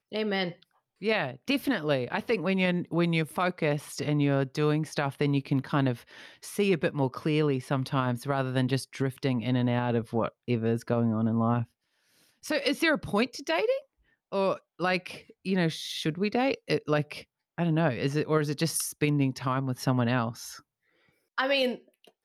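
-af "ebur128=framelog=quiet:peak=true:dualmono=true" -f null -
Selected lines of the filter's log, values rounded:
Integrated loudness:
  I:         -25.4 LUFS
  Threshold: -35.9 LUFS
Loudness range:
  LRA:         2.0 LU
  Threshold: -45.8 LUFS
  LRA low:   -26.8 LUFS
  LRA high:  -24.9 LUFS
True peak:
  Peak:      -13.5 dBFS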